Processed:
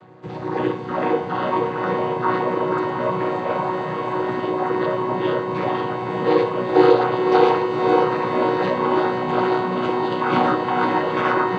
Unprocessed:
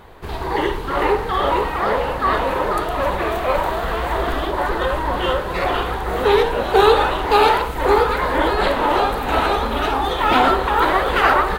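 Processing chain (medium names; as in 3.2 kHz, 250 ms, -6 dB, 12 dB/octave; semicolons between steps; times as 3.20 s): vocoder on a held chord major triad, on B2; on a send: echo that smears into a reverb 493 ms, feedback 66%, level -6 dB; on the sum: trim -2 dB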